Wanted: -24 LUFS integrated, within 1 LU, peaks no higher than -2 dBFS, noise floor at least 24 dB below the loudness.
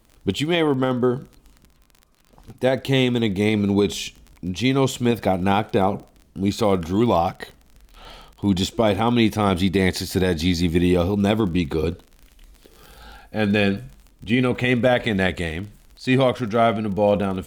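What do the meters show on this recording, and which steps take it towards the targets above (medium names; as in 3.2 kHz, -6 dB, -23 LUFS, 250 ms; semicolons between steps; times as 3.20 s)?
tick rate 32 per s; loudness -21.0 LUFS; peak level -6.0 dBFS; loudness target -24.0 LUFS
-> de-click; trim -3 dB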